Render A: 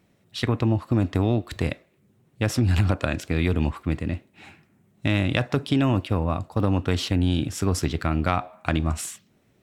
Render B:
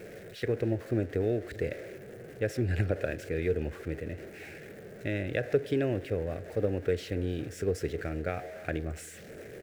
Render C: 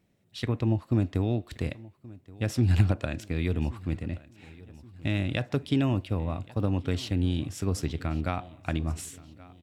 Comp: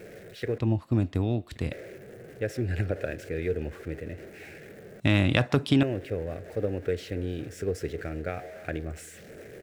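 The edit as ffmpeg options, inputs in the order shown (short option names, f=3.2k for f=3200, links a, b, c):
-filter_complex "[1:a]asplit=3[a][b][c];[a]atrim=end=0.582[d];[2:a]atrim=start=0.578:end=1.722[e];[b]atrim=start=1.718:end=5.002[f];[0:a]atrim=start=4.998:end=5.832[g];[c]atrim=start=5.828[h];[d][e]acrossfade=d=0.004:c1=hsin:c2=hsin[i];[i][f]acrossfade=d=0.004:c1=hsin:c2=hsin[j];[j][g]acrossfade=d=0.004:c1=hsin:c2=hsin[k];[k][h]acrossfade=d=0.004:c1=hsin:c2=hsin"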